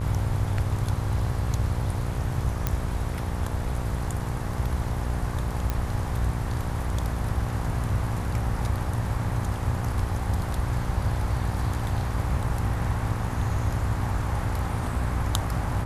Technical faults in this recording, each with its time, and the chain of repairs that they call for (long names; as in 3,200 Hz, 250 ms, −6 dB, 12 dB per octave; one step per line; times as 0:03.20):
mains buzz 60 Hz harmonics 19 −31 dBFS
0:02.67: click −10 dBFS
0:05.70: click −13 dBFS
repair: click removal
hum removal 60 Hz, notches 19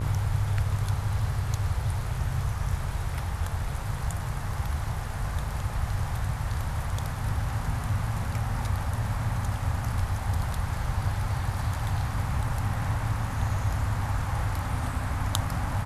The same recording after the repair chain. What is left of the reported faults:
none of them is left